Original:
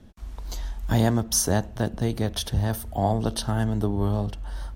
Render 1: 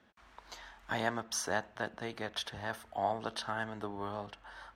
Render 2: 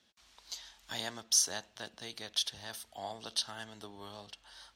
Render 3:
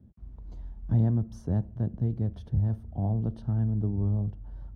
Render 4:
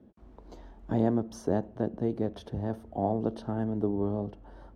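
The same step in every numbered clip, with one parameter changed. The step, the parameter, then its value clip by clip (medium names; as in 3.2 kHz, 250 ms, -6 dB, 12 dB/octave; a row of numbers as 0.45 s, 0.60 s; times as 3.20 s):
band-pass filter, frequency: 1.6 kHz, 4.2 kHz, 120 Hz, 360 Hz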